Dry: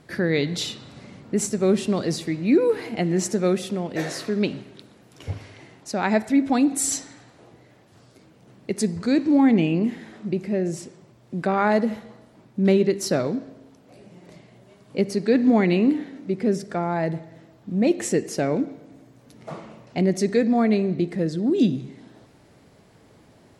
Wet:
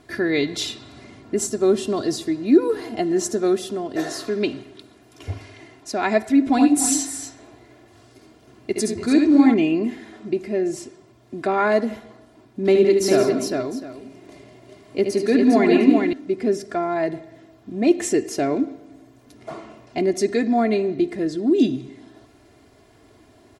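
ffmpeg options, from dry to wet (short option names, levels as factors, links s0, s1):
-filter_complex "[0:a]asettb=1/sr,asplit=3[s0][s1][s2];[s0]atrim=end=1.364[s3];[s1]atrim=start=1.36:end=4.28,asetpts=PTS-STARTPTS,afade=t=in:d=0.004:c=qsin,afade=t=out:st=2.916:d=0.004:c=qsin,equalizer=f=2300:w=3.3:g=-9.5[s4];[s2]atrim=start=4.276[s5];[s3][s4]acrossfade=d=0.004:c1=hsin:c2=qsin[s6];[s6][s5]acrossfade=d=0.004:c1=qsin:c2=hsin,asettb=1/sr,asplit=3[s7][s8][s9];[s7]atrim=end=6.404[s10];[s8]atrim=start=6.4:end=9.54,asetpts=PTS-STARTPTS,afade=t=in:d=0.004:c=qsin,afade=t=out:st=3.136:d=0.004:c=qsin,aecho=1:1:68|85|288|314:0.562|0.376|0.224|0.251,atrim=end_sample=138474[s11];[s9]atrim=start=9.536[s12];[s10][s11]acrossfade=d=0.004:c1=hsin:c2=qsin[s13];[s13][s12]acrossfade=d=0.004:c1=qsin:c2=hsin,asettb=1/sr,asplit=3[s14][s15][s16];[s14]atrim=end=12.604[s17];[s15]atrim=start=12.6:end=16.13,asetpts=PTS-STARTPTS,afade=t=in:d=0.004:c=qsin,afade=t=out:st=3.526:d=0.004:c=qsin,aecho=1:1:74|167|208|403|705:0.422|0.299|0.178|0.631|0.15,atrim=end_sample=155673[s18];[s16]atrim=start=16.126[s19];[s17][s18]acrossfade=d=0.004:c1=hsin:c2=qsin[s20];[s20][s19]acrossfade=d=0.004:c1=qsin:c2=hsin,aecho=1:1:2.9:0.72"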